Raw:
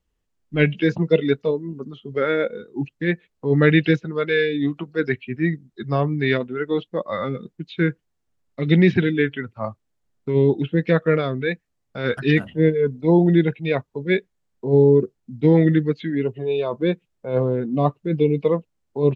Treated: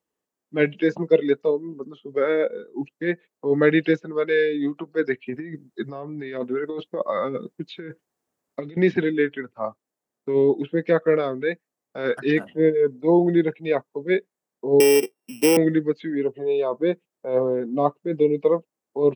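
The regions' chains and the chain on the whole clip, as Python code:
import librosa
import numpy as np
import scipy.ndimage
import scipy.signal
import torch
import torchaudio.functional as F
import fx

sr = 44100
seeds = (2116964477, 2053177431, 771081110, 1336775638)

y = fx.chain(x, sr, fx.low_shelf(hz=71.0, db=9.0),
    fx.over_compress(threshold_db=-27.0, ratio=-1.0), at=(5.26, 8.77))
y = fx.chain(y, sr, fx.sample_sort(block=16),
    fx.highpass(hz=260.0, slope=12),
    fx.band_squash(depth_pct=70), at=(14.8, 15.57))
y = scipy.signal.sosfilt(scipy.signal.butter(2, 320.0, 'highpass', fs=sr, output='sos'), y)
y = fx.peak_eq(y, sr, hz=3200.0, db=-8.5, octaves=1.9)
y = fx.notch(y, sr, hz=1400.0, q=22.0)
y = y * librosa.db_to_amplitude(2.0)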